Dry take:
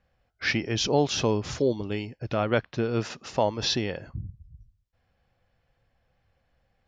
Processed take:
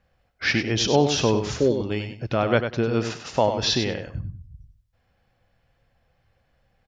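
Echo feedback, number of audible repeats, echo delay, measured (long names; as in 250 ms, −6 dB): 19%, 2, 97 ms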